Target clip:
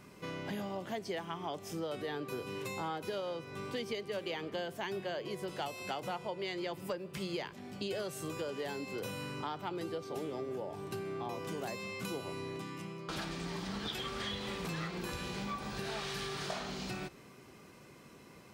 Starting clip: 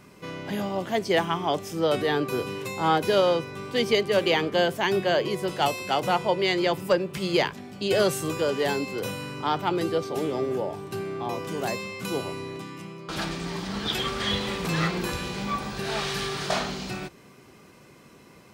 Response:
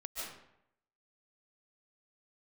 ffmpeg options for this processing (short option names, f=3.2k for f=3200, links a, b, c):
-filter_complex "[0:a]acompressor=threshold=-32dB:ratio=6,asplit=2[a][b];[1:a]atrim=start_sample=2205[c];[b][c]afir=irnorm=-1:irlink=0,volume=-22dB[d];[a][d]amix=inputs=2:normalize=0,volume=-4.5dB"